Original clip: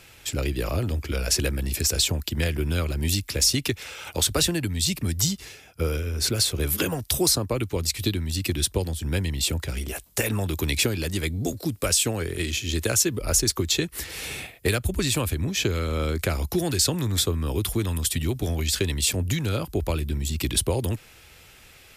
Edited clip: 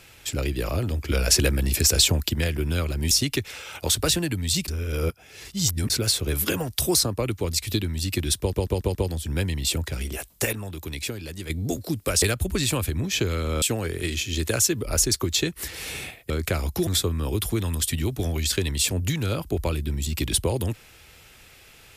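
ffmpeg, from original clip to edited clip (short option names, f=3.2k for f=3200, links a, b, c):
-filter_complex "[0:a]asplit=16[a][b][c][d][e][f][g][h][i][j][k][l][m][n][o][p];[a]atrim=end=1.082[q];[b]atrim=start=1.078:end=2.342,asetpts=PTS-STARTPTS,volume=4dB[r];[c]atrim=start=2.338:end=3.112[s];[d]atrim=start=3.428:end=5.002[t];[e]atrim=start=4.998:end=6.222,asetpts=PTS-STARTPTS,areverse[u];[f]atrim=start=6.218:end=8.852[v];[g]atrim=start=8.708:end=8.852[w];[h]atrim=start=8.708:end=8.852[x];[i]atrim=start=8.708:end=8.852[y];[j]atrim=start=8.708:end=10.292[z];[k]atrim=start=10.288:end=11.262,asetpts=PTS-STARTPTS,volume=-8dB[aa];[l]atrim=start=11.258:end=11.982[ab];[m]atrim=start=14.658:end=16.062[ac];[n]atrim=start=11.978:end=14.662[ad];[o]atrim=start=16.058:end=16.632[ae];[p]atrim=start=17.098[af];[q][r]acrossfade=d=0.004:c1=hsin:c2=hsin[ag];[ag][s]acrossfade=d=0.004:c1=hsin:c2=hsin[ah];[ah][t]acrossfade=d=0.004:c1=hsin:c2=hsin[ai];[ai][u]acrossfade=d=0.004:c1=hsin:c2=hsin[aj];[aj][v]acrossfade=d=0.004:c1=hsin:c2=hsin[ak];[ak][w]acrossfade=d=0.004:c1=hsin:c2=hsin[al];[al][x]acrossfade=d=0.004:c1=hsin:c2=hsin[am];[am][y]acrossfade=d=0.004:c1=hsin:c2=hsin[an];[an][z]acrossfade=d=0.004:c1=hsin:c2=hsin[ao];[ao][aa]acrossfade=d=0.004:c1=hsin:c2=hsin[ap];[ap][ab]acrossfade=d=0.004:c1=hsin:c2=hsin[aq];[aq][ac]acrossfade=d=0.004:c1=hsin:c2=hsin[ar];[ar][ad]acrossfade=d=0.004:c1=hsin:c2=hsin[as];[as][ae]acrossfade=d=0.004:c1=hsin:c2=hsin[at];[at][af]acrossfade=d=0.004:c1=hsin:c2=hsin"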